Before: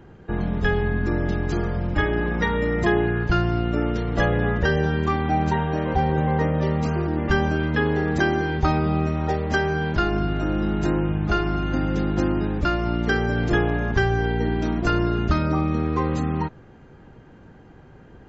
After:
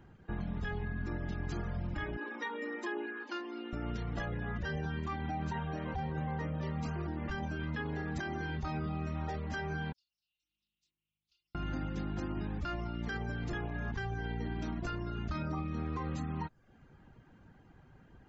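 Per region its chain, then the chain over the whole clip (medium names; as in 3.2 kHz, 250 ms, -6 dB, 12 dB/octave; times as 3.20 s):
2.17–3.73 s: brick-wall FIR high-pass 230 Hz + comb of notches 680 Hz
9.92–11.55 s: inverse Chebyshev high-pass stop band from 1.7 kHz, stop band 60 dB + distance through air 400 m + loudspeaker Doppler distortion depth 0.23 ms
whole clip: reverb removal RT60 0.53 s; peaking EQ 440 Hz -6.5 dB 1 oct; peak limiter -19.5 dBFS; trim -9 dB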